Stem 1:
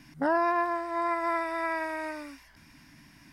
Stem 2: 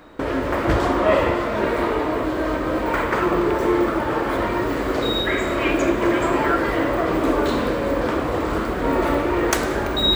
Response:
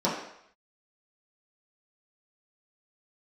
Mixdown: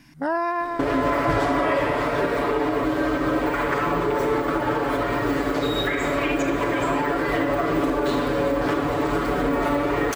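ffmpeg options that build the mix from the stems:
-filter_complex "[0:a]volume=1.5dB[link_01];[1:a]aecho=1:1:7:0.96,alimiter=limit=-14dB:level=0:latency=1:release=178,adelay=600,volume=0.5dB[link_02];[link_01][link_02]amix=inputs=2:normalize=0"

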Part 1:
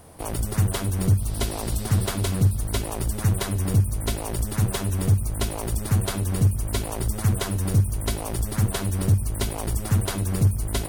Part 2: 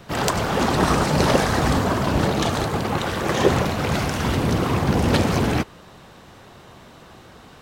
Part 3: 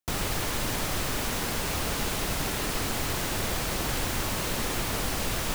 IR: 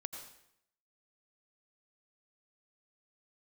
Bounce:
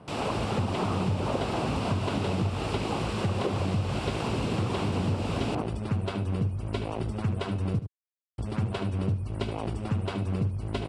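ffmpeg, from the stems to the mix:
-filter_complex "[0:a]lowpass=frequency=1700:poles=1,volume=-0.5dB,asplit=3[link_01][link_02][link_03];[link_01]atrim=end=7.79,asetpts=PTS-STARTPTS,afade=type=out:start_time=7.786:duration=0.004:curve=hsin[link_04];[link_02]atrim=start=7.79:end=8.38,asetpts=PTS-STARTPTS,volume=0[link_05];[link_03]atrim=start=8.38,asetpts=PTS-STARTPTS,afade=type=in:duration=0.004:curve=hsin[link_06];[link_04][link_05][link_06]concat=n=3:v=0:a=1,asplit=2[link_07][link_08];[link_08]volume=-11.5dB[link_09];[1:a]lowpass=frequency=1300:width=0.5412,lowpass=frequency=1300:width=1.3066,volume=-7.5dB[link_10];[2:a]volume=-5.5dB[link_11];[link_09]aecho=0:1:75:1[link_12];[link_07][link_10][link_11][link_12]amix=inputs=4:normalize=0,highpass=100,equalizer=frequency=1800:width_type=q:width=4:gain=-5,equalizer=frequency=2700:width_type=q:width=4:gain=7,equalizer=frequency=6400:width_type=q:width=4:gain=-9,lowpass=frequency=7800:width=0.5412,lowpass=frequency=7800:width=1.3066,acompressor=threshold=-24dB:ratio=6"

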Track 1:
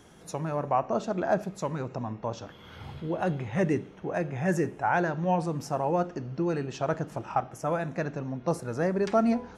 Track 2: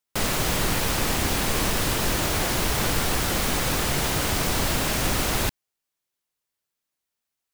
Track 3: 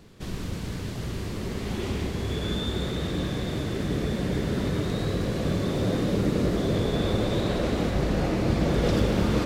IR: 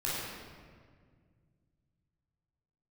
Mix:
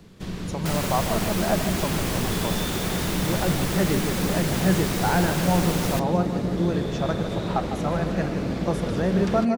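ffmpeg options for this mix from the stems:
-filter_complex "[0:a]adelay=200,volume=0.5dB,asplit=2[link_01][link_02];[link_02]volume=-10dB[link_03];[1:a]adelay=500,volume=-5dB[link_04];[2:a]acrossover=split=230|5500[link_05][link_06][link_07];[link_05]acompressor=threshold=-33dB:ratio=4[link_08];[link_06]acompressor=threshold=-31dB:ratio=4[link_09];[link_07]acompressor=threshold=-56dB:ratio=4[link_10];[link_08][link_09][link_10]amix=inputs=3:normalize=0,volume=1dB[link_11];[link_03]aecho=0:1:152|304|456|608|760|912|1064|1216|1368|1520:1|0.6|0.36|0.216|0.13|0.0778|0.0467|0.028|0.0168|0.0101[link_12];[link_01][link_04][link_11][link_12]amix=inputs=4:normalize=0,equalizer=frequency=180:width_type=o:width=0.3:gain=8"

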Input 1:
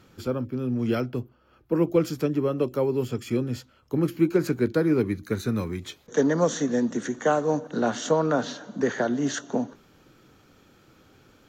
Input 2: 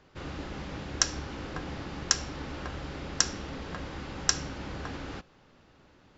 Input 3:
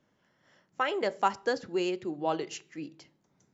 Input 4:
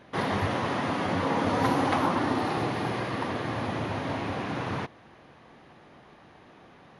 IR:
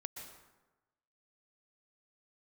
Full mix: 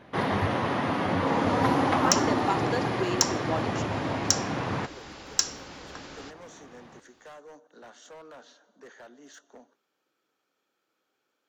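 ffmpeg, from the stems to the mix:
-filter_complex "[0:a]highpass=450,asoftclip=type=hard:threshold=-25dB,volume=-18.5dB,asplit=3[link_01][link_02][link_03];[link_01]atrim=end=3.77,asetpts=PTS-STARTPTS,afade=type=out:start_time=3.766:duration=0.004:curve=hsin[link_04];[link_02]atrim=start=3.77:end=4.9,asetpts=PTS-STARTPTS,volume=0[link_05];[link_03]atrim=start=4.9,asetpts=PTS-STARTPTS,afade=type=in:duration=0.004:curve=hsin[link_06];[link_04][link_05][link_06]concat=n=3:v=0:a=1[link_07];[1:a]bass=frequency=250:gain=-10,treble=frequency=4000:gain=9,asoftclip=type=tanh:threshold=-4dB,adelay=1100,volume=-3.5dB,asplit=2[link_08][link_09];[link_09]volume=-23dB[link_10];[2:a]adelay=1250,volume=-2dB[link_11];[3:a]highshelf=frequency=4400:gain=-5.5,volume=1.5dB[link_12];[4:a]atrim=start_sample=2205[link_13];[link_10][link_13]afir=irnorm=-1:irlink=0[link_14];[link_07][link_08][link_11][link_12][link_14]amix=inputs=5:normalize=0"

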